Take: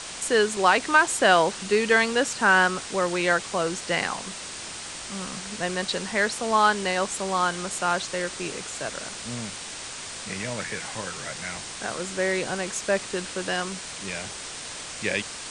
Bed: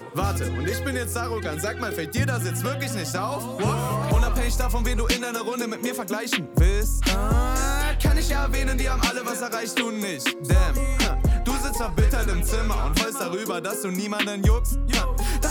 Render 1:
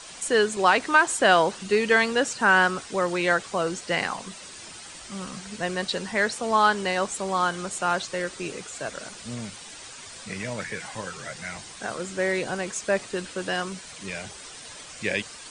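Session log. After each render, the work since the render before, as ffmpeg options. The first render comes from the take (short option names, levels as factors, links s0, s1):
-af "afftdn=nr=9:nf=-37"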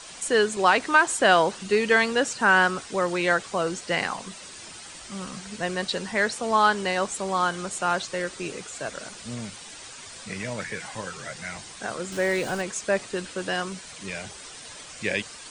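-filter_complex "[0:a]asettb=1/sr,asplit=3[s0][s1][s2];[s0]atrim=end=12.124[s3];[s1]atrim=start=12.12:end=12.62,asetpts=PTS-STARTPTS,afade=t=in:d=0.004:c=qsin,afade=t=out:st=0.496:d=0.004:c=qsin,aeval=exprs='val(0)+0.5*0.015*sgn(val(0))':c=same[s4];[s2]atrim=start=12.616[s5];[s3][s4]acrossfade=d=0.004:c1=hsin:c2=qsin[s6];[s6][s5]acrossfade=d=0.004:c1=qsin:c2=hsin"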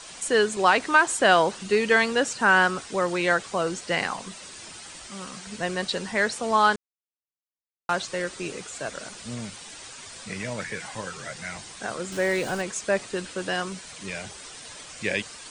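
-filter_complex "[0:a]asettb=1/sr,asplit=3[s0][s1][s2];[s0]atrim=end=5.074[s3];[s1]atrim=start=5.07:end=5.47,asetpts=PTS-STARTPTS,afade=t=in:d=0.004:c=qsin,afade=t=out:st=0.396:d=0.004:c=qsin,lowshelf=f=240:g=-8[s4];[s2]atrim=start=5.466[s5];[s3][s4]acrossfade=d=0.004:c1=hsin:c2=qsin[s6];[s6][s5]acrossfade=d=0.004:c1=qsin:c2=hsin,asplit=3[s7][s8][s9];[s7]atrim=end=6.76,asetpts=PTS-STARTPTS,afade=t=out:st=6.756:d=0.004:c=hsin[s10];[s8]atrim=start=6.76:end=7.89,asetpts=PTS-STARTPTS,volume=0[s11];[s9]atrim=start=7.89,asetpts=PTS-STARTPTS,afade=t=in:d=0.004:c=hsin[s12];[s10][s11][s12]concat=n=3:v=0:a=1"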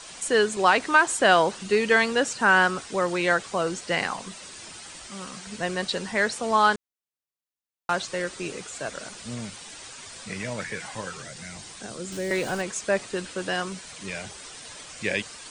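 -filter_complex "[0:a]asettb=1/sr,asplit=3[s0][s1][s2];[s0]atrim=end=11.224[s3];[s1]atrim=start=11.22:end=12.31,asetpts=PTS-STARTPTS,afade=t=in:d=0.004:c=qsin,afade=t=out:st=1.086:d=0.004:c=qsin,acrossover=split=450|3000[s4][s5][s6];[s5]acompressor=threshold=0.00501:ratio=3:attack=3.2:release=140:knee=2.83:detection=peak[s7];[s4][s7][s6]amix=inputs=3:normalize=0[s8];[s2]atrim=start=12.306[s9];[s3][s8]acrossfade=d=0.004:c1=hsin:c2=qsin[s10];[s10][s9]acrossfade=d=0.004:c1=qsin:c2=hsin"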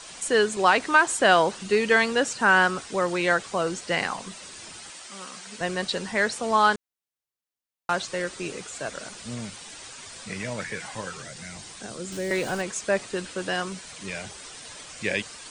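-filter_complex "[0:a]asettb=1/sr,asplit=3[s0][s1][s2];[s0]atrim=end=4.904[s3];[s1]atrim=start=4.9:end=5.61,asetpts=PTS-STARTPTS,afade=t=in:d=0.004:c=qsin,afade=t=out:st=0.706:d=0.004:c=qsin,highpass=f=450:p=1[s4];[s2]atrim=start=5.606[s5];[s3][s4]acrossfade=d=0.004:c1=hsin:c2=qsin[s6];[s6][s5]acrossfade=d=0.004:c1=qsin:c2=hsin"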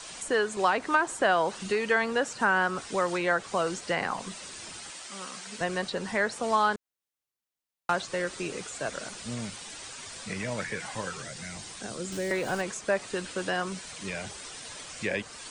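-filter_complex "[0:a]acrossover=split=580|1700[s0][s1][s2];[s0]acompressor=threshold=0.0282:ratio=4[s3];[s1]acompressor=threshold=0.0708:ratio=4[s4];[s2]acompressor=threshold=0.0141:ratio=4[s5];[s3][s4][s5]amix=inputs=3:normalize=0"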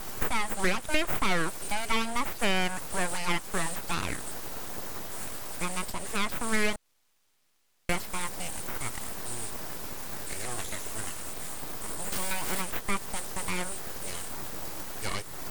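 -af "aexciter=amount=11:drive=4.5:freq=8700,aeval=exprs='abs(val(0))':c=same"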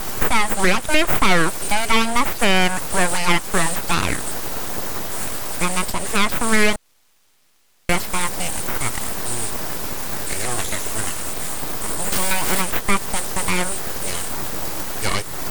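-af "volume=3.76,alimiter=limit=0.794:level=0:latency=1"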